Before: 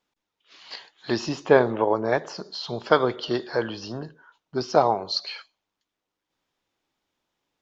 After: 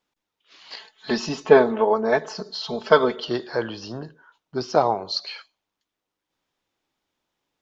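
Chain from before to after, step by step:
0:00.76–0:03.24: comb filter 4.6 ms, depth 88%

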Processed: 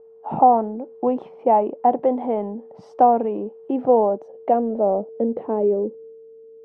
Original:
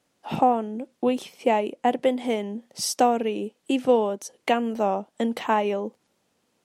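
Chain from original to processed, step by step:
steady tone 450 Hz −47 dBFS
transient designer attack −1 dB, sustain +4 dB
low-pass filter sweep 860 Hz → 400 Hz, 0:03.65–0:05.95

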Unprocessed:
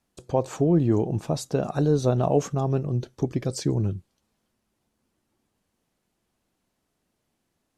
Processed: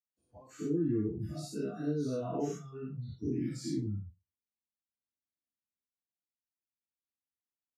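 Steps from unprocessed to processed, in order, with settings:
every bin's largest magnitude spread in time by 120 ms
noise reduction from a noise print of the clip's start 26 dB
convolution reverb RT60 0.25 s, pre-delay 47 ms, DRR −60 dB
level −6.5 dB

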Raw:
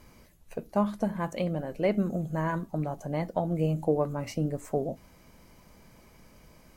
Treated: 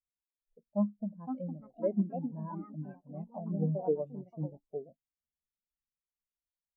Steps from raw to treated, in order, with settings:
delay with pitch and tempo change per echo 672 ms, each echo +4 semitones, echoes 2
every bin expanded away from the loudest bin 2.5 to 1
level −6.5 dB

